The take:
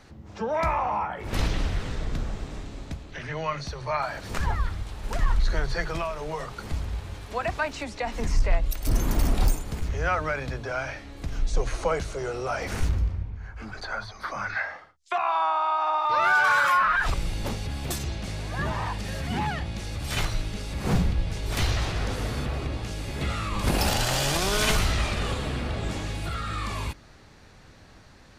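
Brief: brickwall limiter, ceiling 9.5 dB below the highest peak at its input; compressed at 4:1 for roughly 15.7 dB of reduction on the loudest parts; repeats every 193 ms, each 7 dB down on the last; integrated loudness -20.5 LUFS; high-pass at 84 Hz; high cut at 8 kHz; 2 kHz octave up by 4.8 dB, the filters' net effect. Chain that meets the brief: high-pass 84 Hz; low-pass 8 kHz; peaking EQ 2 kHz +7 dB; compression 4:1, threshold -34 dBFS; peak limiter -30 dBFS; feedback delay 193 ms, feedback 45%, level -7 dB; trim +17.5 dB

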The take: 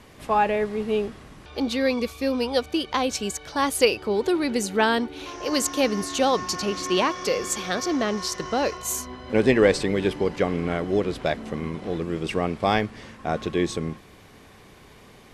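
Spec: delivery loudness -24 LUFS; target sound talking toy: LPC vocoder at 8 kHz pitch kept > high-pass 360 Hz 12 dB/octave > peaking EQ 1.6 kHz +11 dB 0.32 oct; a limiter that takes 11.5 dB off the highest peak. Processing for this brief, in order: peak limiter -16.5 dBFS; LPC vocoder at 8 kHz pitch kept; high-pass 360 Hz 12 dB/octave; peaking EQ 1.6 kHz +11 dB 0.32 oct; trim +6 dB

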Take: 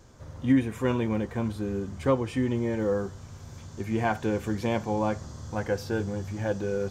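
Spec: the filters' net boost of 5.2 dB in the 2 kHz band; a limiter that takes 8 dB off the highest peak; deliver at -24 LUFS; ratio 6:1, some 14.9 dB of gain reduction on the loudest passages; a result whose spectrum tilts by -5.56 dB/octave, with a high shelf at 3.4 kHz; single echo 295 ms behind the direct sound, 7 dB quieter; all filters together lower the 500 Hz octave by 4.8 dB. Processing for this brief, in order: peaking EQ 500 Hz -6 dB; peaking EQ 2 kHz +6.5 dB; treble shelf 3.4 kHz +3 dB; compression 6:1, threshold -34 dBFS; peak limiter -32 dBFS; delay 295 ms -7 dB; trim +16.5 dB

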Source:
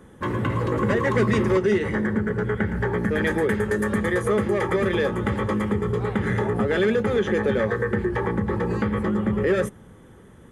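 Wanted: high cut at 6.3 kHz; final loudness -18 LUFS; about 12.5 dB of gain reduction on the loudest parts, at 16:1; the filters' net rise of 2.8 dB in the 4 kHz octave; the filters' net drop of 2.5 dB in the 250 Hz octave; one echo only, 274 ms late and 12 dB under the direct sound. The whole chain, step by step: low-pass 6.3 kHz; peaking EQ 250 Hz -3.5 dB; peaking EQ 4 kHz +4 dB; compression 16:1, threshold -30 dBFS; delay 274 ms -12 dB; trim +16 dB

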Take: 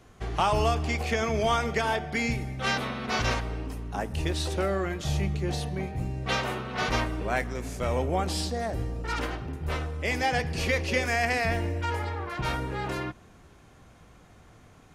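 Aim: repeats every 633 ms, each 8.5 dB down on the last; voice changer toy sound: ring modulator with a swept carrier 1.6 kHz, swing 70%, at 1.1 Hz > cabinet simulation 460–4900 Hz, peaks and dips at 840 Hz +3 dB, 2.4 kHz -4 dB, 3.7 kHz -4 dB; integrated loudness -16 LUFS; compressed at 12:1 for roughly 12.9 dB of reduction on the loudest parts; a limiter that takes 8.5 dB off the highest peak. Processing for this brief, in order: compression 12:1, threshold -34 dBFS; peak limiter -31 dBFS; feedback delay 633 ms, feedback 38%, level -8.5 dB; ring modulator with a swept carrier 1.6 kHz, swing 70%, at 1.1 Hz; cabinet simulation 460–4900 Hz, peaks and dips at 840 Hz +3 dB, 2.4 kHz -4 dB, 3.7 kHz -4 dB; trim +26.5 dB

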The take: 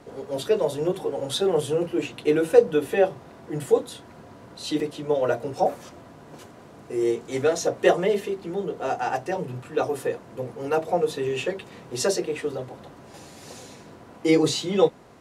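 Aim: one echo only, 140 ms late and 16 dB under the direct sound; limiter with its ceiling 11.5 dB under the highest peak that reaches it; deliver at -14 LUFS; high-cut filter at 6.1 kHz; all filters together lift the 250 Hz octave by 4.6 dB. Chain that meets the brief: low-pass 6.1 kHz; peaking EQ 250 Hz +7 dB; peak limiter -12.5 dBFS; delay 140 ms -16 dB; trim +11 dB

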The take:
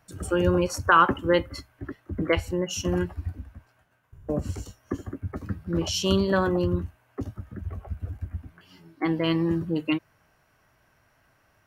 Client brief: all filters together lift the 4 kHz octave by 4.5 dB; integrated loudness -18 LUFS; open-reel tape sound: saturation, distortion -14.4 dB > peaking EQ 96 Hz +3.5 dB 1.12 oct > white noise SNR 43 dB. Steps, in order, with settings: peaking EQ 4 kHz +7 dB; saturation -14.5 dBFS; peaking EQ 96 Hz +3.5 dB 1.12 oct; white noise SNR 43 dB; trim +9.5 dB

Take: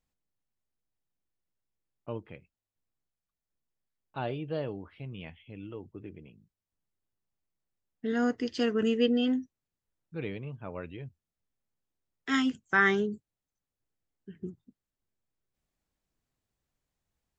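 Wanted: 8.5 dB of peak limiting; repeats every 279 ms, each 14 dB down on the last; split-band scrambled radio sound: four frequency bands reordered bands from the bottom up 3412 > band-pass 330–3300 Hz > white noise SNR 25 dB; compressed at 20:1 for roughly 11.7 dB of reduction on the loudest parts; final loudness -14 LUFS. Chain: compression 20:1, threshold -30 dBFS; peak limiter -28.5 dBFS; feedback delay 279 ms, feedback 20%, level -14 dB; four frequency bands reordered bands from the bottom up 3412; band-pass 330–3300 Hz; white noise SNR 25 dB; trim +26 dB

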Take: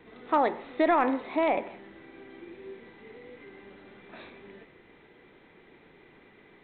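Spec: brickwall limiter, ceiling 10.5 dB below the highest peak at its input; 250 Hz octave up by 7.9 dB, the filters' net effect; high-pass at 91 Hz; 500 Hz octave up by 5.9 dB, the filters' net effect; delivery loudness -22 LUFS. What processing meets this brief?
high-pass 91 Hz; peaking EQ 250 Hz +7.5 dB; peaking EQ 500 Hz +6.5 dB; trim +10.5 dB; peak limiter -8 dBFS

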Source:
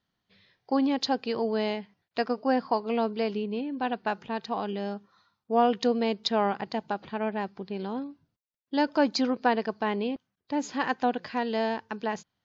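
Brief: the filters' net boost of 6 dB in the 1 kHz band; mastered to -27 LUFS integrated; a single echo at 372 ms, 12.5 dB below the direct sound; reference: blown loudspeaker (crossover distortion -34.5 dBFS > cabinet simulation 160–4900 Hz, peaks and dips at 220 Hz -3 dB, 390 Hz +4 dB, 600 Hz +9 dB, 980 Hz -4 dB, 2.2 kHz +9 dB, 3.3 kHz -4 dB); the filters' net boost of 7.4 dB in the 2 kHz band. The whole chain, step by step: peaking EQ 1 kHz +7 dB; peaking EQ 2 kHz +3.5 dB; delay 372 ms -12.5 dB; crossover distortion -34.5 dBFS; cabinet simulation 160–4900 Hz, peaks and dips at 220 Hz -3 dB, 390 Hz +4 dB, 600 Hz +9 dB, 980 Hz -4 dB, 2.2 kHz +9 dB, 3.3 kHz -4 dB; trim -1.5 dB

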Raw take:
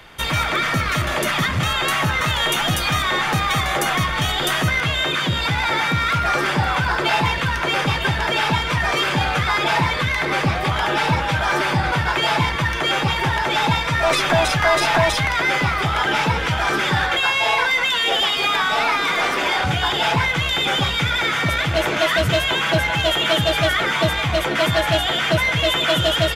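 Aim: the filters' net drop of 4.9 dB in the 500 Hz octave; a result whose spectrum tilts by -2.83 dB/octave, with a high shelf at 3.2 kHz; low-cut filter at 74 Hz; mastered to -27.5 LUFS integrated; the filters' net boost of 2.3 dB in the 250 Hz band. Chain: high-pass 74 Hz; peaking EQ 250 Hz +6.5 dB; peaking EQ 500 Hz -8.5 dB; treble shelf 3.2 kHz -5.5 dB; trim -7 dB

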